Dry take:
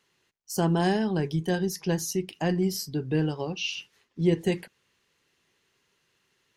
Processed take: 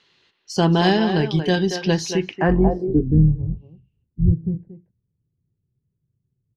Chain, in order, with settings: 2.48–4.32 octaver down 2 oct, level -2 dB; speakerphone echo 0.23 s, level -7 dB; low-pass sweep 4000 Hz -> 120 Hz, 2.08–3.37; gain +7 dB

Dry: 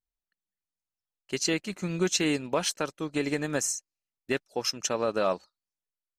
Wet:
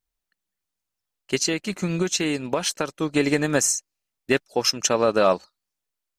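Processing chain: 1.35–3 compressor, threshold -28 dBFS, peak gain reduction 7.5 dB; gain +8 dB

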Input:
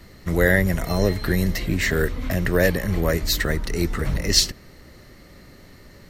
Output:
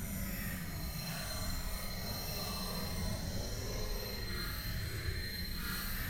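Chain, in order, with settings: passive tone stack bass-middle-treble 5-5-5; compressor 3:1, threshold -47 dBFS, peak gain reduction 20 dB; tube stage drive 46 dB, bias 0.55; reverse echo 0.132 s -3.5 dB; Paulstretch 9.8×, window 0.05 s, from 0.66; gain +11 dB

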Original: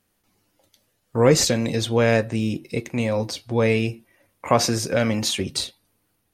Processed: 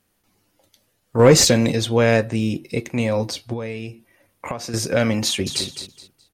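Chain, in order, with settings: 1.19–1.72 sample leveller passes 1; 3.53–4.74 compressor 10:1, threshold -28 dBFS, peak gain reduction 16.5 dB; 5.25–5.65 echo throw 0.21 s, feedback 25%, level -9 dB; gain +2 dB

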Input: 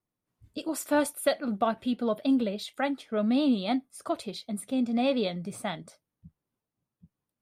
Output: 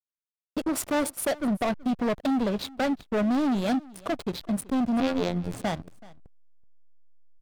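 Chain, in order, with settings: bell 2700 Hz -2.5 dB 2.8 oct; in parallel at +2 dB: compressor 16:1, threshold -30 dBFS, peak gain reduction 11.5 dB; on the sum: hard clip -22.5 dBFS, distortion -10 dB; 5–5.54 robotiser 87.9 Hz; backlash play -27.5 dBFS; on a send: echo 0.378 s -22 dB; on the sum: gain +3 dB

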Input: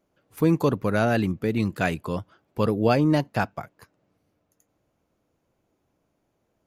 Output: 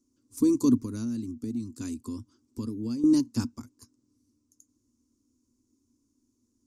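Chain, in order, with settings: EQ curve 120 Hz 0 dB, 170 Hz -22 dB, 240 Hz +14 dB, 710 Hz -29 dB, 1000 Hz -9 dB, 1700 Hz -20 dB, 3200 Hz -12 dB, 5500 Hz +10 dB, 8200 Hz +12 dB, 14000 Hz -5 dB; 0.8–3.04 compressor 3:1, threshold -32 dBFS, peak gain reduction 14 dB; gain -2 dB

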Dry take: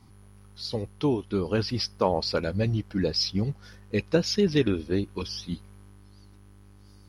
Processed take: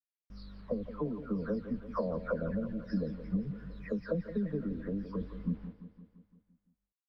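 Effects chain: spectral delay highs early, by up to 0.426 s; gate with hold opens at -42 dBFS; tilt -2.5 dB/oct; compressor 12:1, threshold -29 dBFS, peak gain reduction 16 dB; fixed phaser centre 550 Hz, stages 8; bit-crush 10-bit; air absorption 410 m; feedback echo 0.171 s, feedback 59%, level -12 dB; gain +2.5 dB

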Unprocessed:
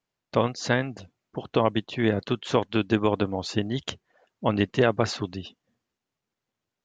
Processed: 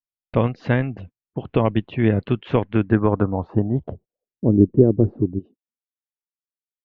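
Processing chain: gate -46 dBFS, range -31 dB; tilt -3.5 dB/oct, from 5.38 s +2.5 dB/oct; low-pass sweep 2600 Hz -> 350 Hz, 2.53–4.54; gain -1.5 dB

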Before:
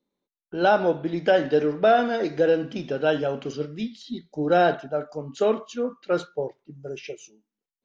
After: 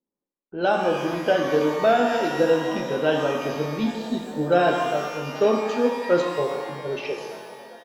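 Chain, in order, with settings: frequency-shifting echo 0.404 s, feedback 58%, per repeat +41 Hz, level -18.5 dB; AGC gain up to 16 dB; low-pass opened by the level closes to 1300 Hz, open at -10 dBFS; shimmer reverb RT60 1.4 s, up +12 st, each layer -8 dB, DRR 3 dB; gain -9 dB

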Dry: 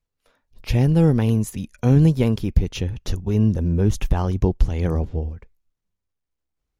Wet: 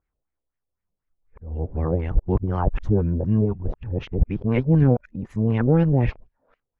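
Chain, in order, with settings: whole clip reversed; LFO low-pass sine 4 Hz 560–2100 Hz; gain -2.5 dB

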